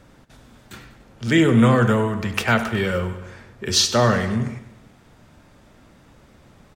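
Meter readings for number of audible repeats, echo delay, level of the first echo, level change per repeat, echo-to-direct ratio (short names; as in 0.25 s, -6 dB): 4, 98 ms, -14.0 dB, -5.5 dB, -12.5 dB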